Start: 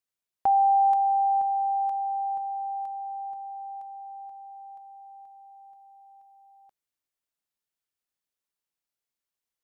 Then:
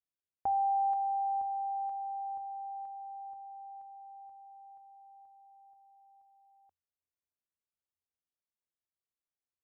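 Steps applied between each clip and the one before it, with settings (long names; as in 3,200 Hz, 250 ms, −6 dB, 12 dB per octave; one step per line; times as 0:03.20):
low-pass filter 1,000 Hz 6 dB per octave
parametric band 85 Hz +14 dB 0.24 octaves
level −7 dB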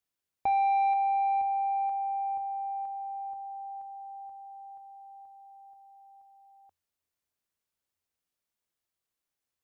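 soft clipping −28.5 dBFS, distortion −17 dB
level +7 dB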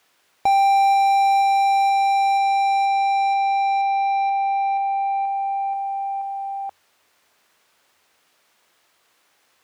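mid-hump overdrive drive 30 dB, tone 2,300 Hz, clips at −22 dBFS
level +9 dB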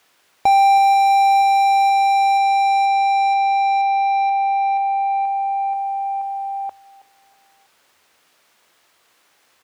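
repeating echo 323 ms, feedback 43%, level −20 dB
level +3.5 dB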